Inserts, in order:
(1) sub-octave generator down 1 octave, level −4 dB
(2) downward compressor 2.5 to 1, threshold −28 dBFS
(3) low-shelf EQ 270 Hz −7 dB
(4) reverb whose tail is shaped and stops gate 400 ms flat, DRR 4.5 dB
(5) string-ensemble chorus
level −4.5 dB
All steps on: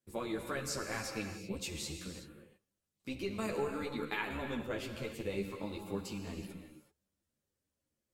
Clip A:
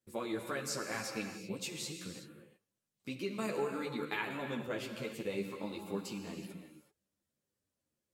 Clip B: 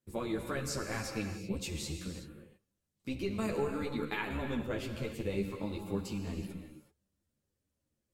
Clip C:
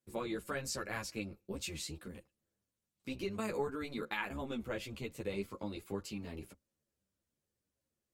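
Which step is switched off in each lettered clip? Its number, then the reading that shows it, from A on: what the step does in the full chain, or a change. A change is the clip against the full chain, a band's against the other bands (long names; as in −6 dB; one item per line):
1, 125 Hz band −2.5 dB
3, 125 Hz band +5.5 dB
4, change in momentary loudness spread −1 LU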